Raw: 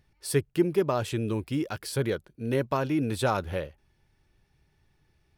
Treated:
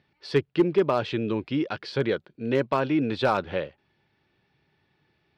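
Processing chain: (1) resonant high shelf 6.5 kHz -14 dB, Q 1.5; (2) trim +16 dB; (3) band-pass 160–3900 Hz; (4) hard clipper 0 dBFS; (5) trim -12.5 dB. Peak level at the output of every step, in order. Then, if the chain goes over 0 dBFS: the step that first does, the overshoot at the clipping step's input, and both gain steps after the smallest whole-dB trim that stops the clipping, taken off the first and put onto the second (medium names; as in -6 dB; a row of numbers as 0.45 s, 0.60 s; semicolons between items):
-12.0 dBFS, +4.0 dBFS, +4.0 dBFS, 0.0 dBFS, -12.5 dBFS; step 2, 4.0 dB; step 2 +12 dB, step 5 -8.5 dB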